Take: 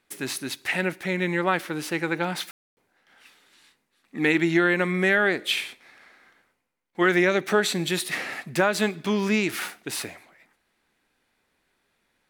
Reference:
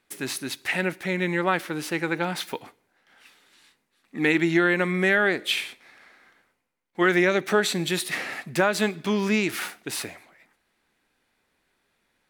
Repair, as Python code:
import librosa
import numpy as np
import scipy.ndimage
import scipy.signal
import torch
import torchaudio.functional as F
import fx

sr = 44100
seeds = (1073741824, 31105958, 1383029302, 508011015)

y = fx.fix_ambience(x, sr, seeds[0], print_start_s=6.45, print_end_s=6.95, start_s=2.51, end_s=2.77)